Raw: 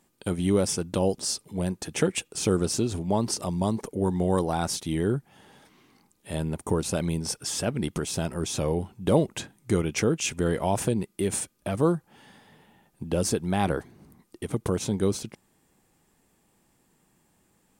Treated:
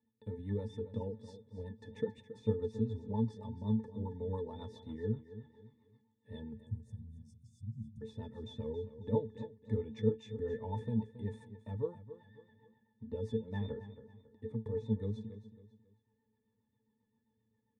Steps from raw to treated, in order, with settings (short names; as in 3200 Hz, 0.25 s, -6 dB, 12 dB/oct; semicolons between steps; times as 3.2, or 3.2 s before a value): 6.53–8.01 inverse Chebyshev band-stop 560–2000 Hz, stop band 70 dB; octave resonator A, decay 0.16 s; rotary speaker horn 7.5 Hz; feedback echo 0.274 s, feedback 35%, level -13.5 dB